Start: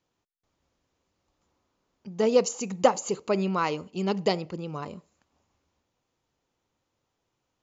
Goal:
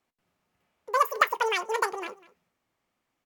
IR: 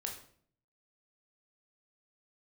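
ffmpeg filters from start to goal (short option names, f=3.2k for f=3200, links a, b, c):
-filter_complex "[0:a]equalizer=f=5k:t=o:w=1.6:g=-6,aecho=1:1:458:0.0944,asplit=2[a][b];[1:a]atrim=start_sample=2205,atrim=end_sample=3528[c];[b][c]afir=irnorm=-1:irlink=0,volume=-7dB[d];[a][d]amix=inputs=2:normalize=0,asetrate=103194,aresample=44100,volume=-2.5dB"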